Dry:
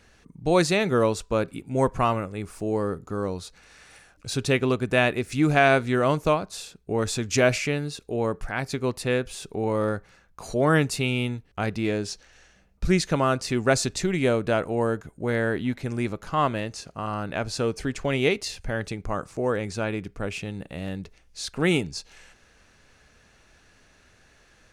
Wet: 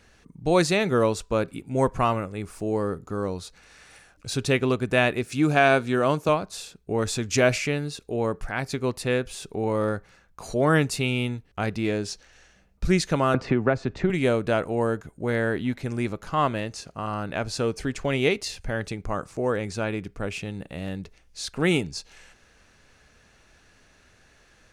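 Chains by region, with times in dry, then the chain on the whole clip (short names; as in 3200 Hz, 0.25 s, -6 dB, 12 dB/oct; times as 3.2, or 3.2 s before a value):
5.24–6.29 HPF 120 Hz + notch 2000 Hz, Q 11
13.34–14.1 LPF 1800 Hz + three-band squash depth 100%
whole clip: dry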